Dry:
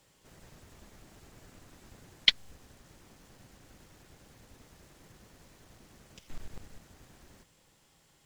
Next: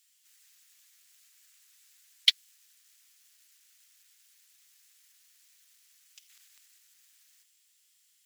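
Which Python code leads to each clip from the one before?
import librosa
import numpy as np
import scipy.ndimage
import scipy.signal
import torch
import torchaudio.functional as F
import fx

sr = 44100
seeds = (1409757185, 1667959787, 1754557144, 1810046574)

y = scipy.signal.sosfilt(scipy.signal.bessel(4, 2800.0, 'highpass', norm='mag', fs=sr, output='sos'), x)
y = fx.high_shelf(y, sr, hz=9500.0, db=9.5)
y = fx.leveller(y, sr, passes=1)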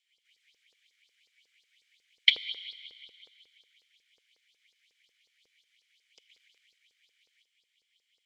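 y = fx.vowel_filter(x, sr, vowel='i')
y = fx.rev_plate(y, sr, seeds[0], rt60_s=2.7, hf_ratio=0.9, predelay_ms=0, drr_db=10.5)
y = fx.filter_lfo_highpass(y, sr, shape='saw_up', hz=5.5, low_hz=450.0, high_hz=5200.0, q=4.1)
y = y * librosa.db_to_amplitude(8.0)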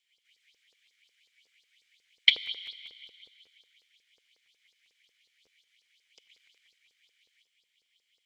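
y = fx.buffer_crackle(x, sr, first_s=0.65, period_s=0.2, block=512, kind='repeat')
y = y * librosa.db_to_amplitude(1.0)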